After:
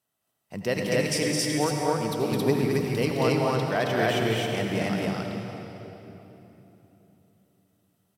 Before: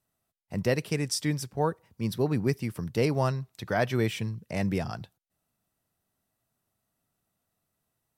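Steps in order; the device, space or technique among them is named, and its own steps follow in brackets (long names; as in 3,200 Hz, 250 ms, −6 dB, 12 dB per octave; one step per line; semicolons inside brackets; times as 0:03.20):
stadium PA (high-pass filter 240 Hz 6 dB per octave; parametric band 3,100 Hz +6 dB 0.22 octaves; loudspeakers that aren't time-aligned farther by 73 metres −4 dB, 93 metres 0 dB; convolution reverb RT60 3.4 s, pre-delay 67 ms, DRR 2.5 dB)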